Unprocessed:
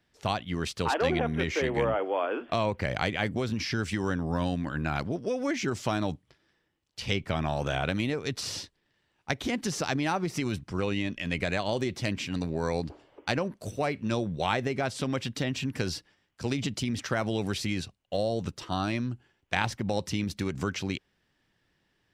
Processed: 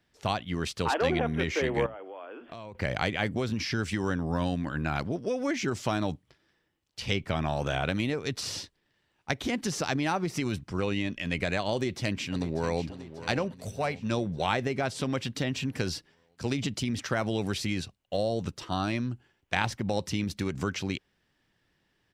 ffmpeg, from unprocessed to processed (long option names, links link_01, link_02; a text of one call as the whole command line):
ffmpeg -i in.wav -filter_complex "[0:a]asettb=1/sr,asplit=3[link_01][link_02][link_03];[link_01]atrim=end=1.864[link_04];[link_02]atrim=start=1.86:end=2.75,asetpts=PTS-STARTPTS,afade=type=in:duration=0.004:curve=qsin,afade=type=out:start_time=0.886:duration=0.004:curve=qsin,acompressor=threshold=-44dB:ratio=3:attack=3.2:release=140:knee=1:detection=peak[link_05];[link_03]atrim=start=2.746[link_06];[link_04][link_05]acrossfade=duration=0.004:curve1=hsin:curve2=qsin[link_07];[link_07][link_06]acrossfade=duration=0.004:curve1=qsin:curve2=hsin,asplit=2[link_08][link_09];[link_09]afade=type=in:start_time=11.73:duration=0.01,afade=type=out:start_time=12.87:duration=0.01,aecho=0:1:590|1180|1770|2360|2950|3540:0.211349|0.116242|0.063933|0.0351632|0.0193397|0.0106369[link_10];[link_08][link_10]amix=inputs=2:normalize=0,asettb=1/sr,asplit=3[link_11][link_12][link_13];[link_11]atrim=end=13.484[link_14];[link_12]atrim=start=13.48:end=14.1,asetpts=PTS-STARTPTS,afade=type=in:duration=0.004:curve=qsin,afade=type=out:start_time=0.616:duration=0.004:curve=qsin,equalizer=frequency=330:width_type=o:width=0.37:gain=-13[link_15];[link_13]atrim=start=14.096[link_16];[link_14][link_15]acrossfade=duration=0.004:curve1=hsin:curve2=qsin[link_17];[link_17][link_16]acrossfade=duration=0.004:curve1=qsin:curve2=hsin" out.wav